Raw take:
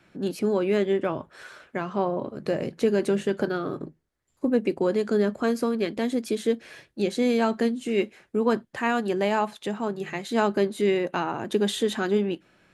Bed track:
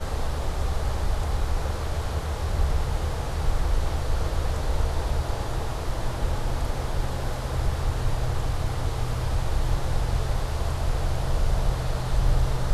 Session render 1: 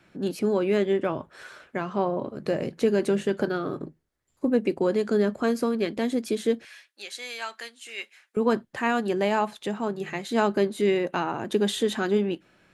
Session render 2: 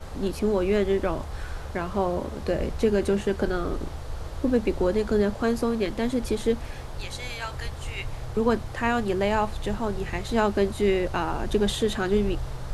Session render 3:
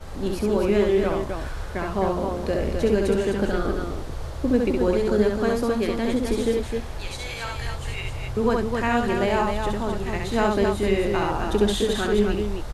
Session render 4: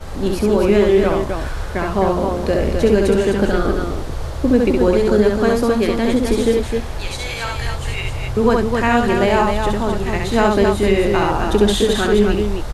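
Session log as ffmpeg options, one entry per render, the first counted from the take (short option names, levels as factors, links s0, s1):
-filter_complex "[0:a]asettb=1/sr,asplit=3[s0][s1][s2];[s0]atrim=end=6.654[s3];[s1]atrim=start=6.65:end=8.37,asetpts=PTS-STARTPTS,afade=t=in:d=0.004:c=qsin,afade=t=out:st=1.716:d=0.004:c=qsin,highpass=1500[s4];[s2]atrim=start=8.366[s5];[s3][s4]acrossfade=d=0.004:c1=hsin:c2=qsin[s6];[s6][s5]acrossfade=d=0.004:c1=qsin:c2=hsin"
-filter_complex "[1:a]volume=0.355[s0];[0:a][s0]amix=inputs=2:normalize=0"
-af "aecho=1:1:67.06|259.5:0.708|0.562"
-af "volume=2.24,alimiter=limit=0.708:level=0:latency=1"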